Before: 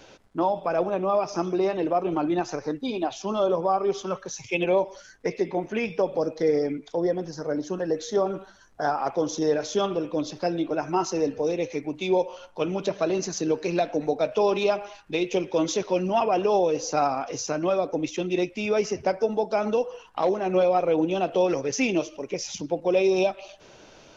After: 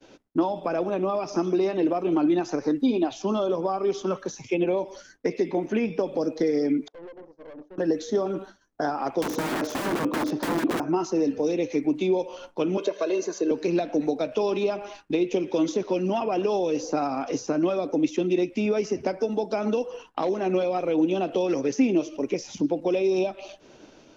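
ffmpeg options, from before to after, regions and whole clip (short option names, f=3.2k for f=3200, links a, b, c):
-filter_complex "[0:a]asettb=1/sr,asplit=3[a][b][c];[a]atrim=end=6.884[d];[b]atrim=start=6.88:end=7.78,asetpts=PTS-STARTPTS,afade=t=in:d=0.004:c=qsin,afade=t=out:st=0.896:d=0.004:c=qsin,bandpass=f=570:t=q:w=3.2,acompressor=threshold=-35dB:ratio=8:attack=3.2:release=140:knee=1:detection=peak,aeval=exprs='(tanh(158*val(0)+0.8)-tanh(0.8))/158':c=same[e];[c]atrim=start=7.776[f];[d][e]acrossfade=d=0.004:c1=hsin:c2=qsin[g];[g][f]acrossfade=d=0.004:c1=qsin:c2=hsin,asettb=1/sr,asplit=3[h][i][j];[h]atrim=end=9.224[k];[i]atrim=start=9.22:end=10.8,asetpts=PTS-STARTPTS,afade=t=in:d=0.004:c=qsin,afade=t=out:st=1.576:d=0.004:c=qsin,lowshelf=f=110:g=-7.5,acontrast=51,aeval=exprs='(mod(11.2*val(0)+1,2)-1)/11.2':c=same[l];[j]atrim=start=10.796[m];[k][l]acrossfade=d=0.004:c1=hsin:c2=qsin[n];[n][m]acrossfade=d=0.004:c1=qsin:c2=hsin,asettb=1/sr,asplit=3[o][p][q];[o]atrim=end=12.774[r];[p]atrim=start=12.77:end=13.51,asetpts=PTS-STARTPTS,afade=t=in:d=0.004:c=qsin,afade=t=out:st=0.736:d=0.004:c=qsin,highpass=f=280:w=0.5412,highpass=f=280:w=1.3066,bandreject=f=5.2k:w=15,aecho=1:1:1.9:0.65,atrim=end_sample=32634[s];[q]atrim=start=13.506[t];[r][s]acrossfade=d=0.004:c1=hsin:c2=qsin[u];[u][t]acrossfade=d=0.004:c1=qsin:c2=hsin,acrossover=split=130|1700[v][w][x];[v]acompressor=threshold=-56dB:ratio=4[y];[w]acompressor=threshold=-29dB:ratio=4[z];[x]acompressor=threshold=-42dB:ratio=4[aa];[y][z][aa]amix=inputs=3:normalize=0,agate=range=-33dB:threshold=-44dB:ratio=3:detection=peak,equalizer=f=280:w=1.4:g=10,volume=2dB"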